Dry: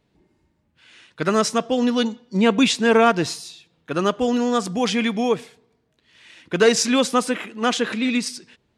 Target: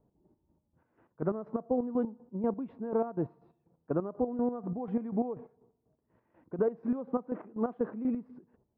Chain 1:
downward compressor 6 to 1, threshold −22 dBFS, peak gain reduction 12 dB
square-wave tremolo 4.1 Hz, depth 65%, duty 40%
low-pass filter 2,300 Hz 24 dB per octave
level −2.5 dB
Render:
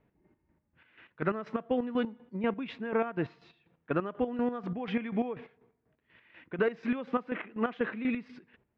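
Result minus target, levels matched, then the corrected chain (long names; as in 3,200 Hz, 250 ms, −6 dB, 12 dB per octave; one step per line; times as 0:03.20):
2,000 Hz band +17.5 dB
downward compressor 6 to 1, threshold −22 dBFS, peak gain reduction 12 dB
square-wave tremolo 4.1 Hz, depth 65%, duty 40%
low-pass filter 960 Hz 24 dB per octave
level −2.5 dB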